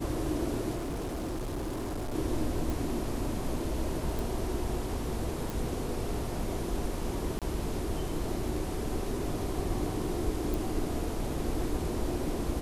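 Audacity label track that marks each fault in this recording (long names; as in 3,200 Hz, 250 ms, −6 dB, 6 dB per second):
0.750000	2.150000	clipping −31.5 dBFS
2.700000	2.700000	click
4.190000	4.190000	click
5.500000	5.500000	click
7.390000	7.420000	drop-out 27 ms
10.540000	10.540000	click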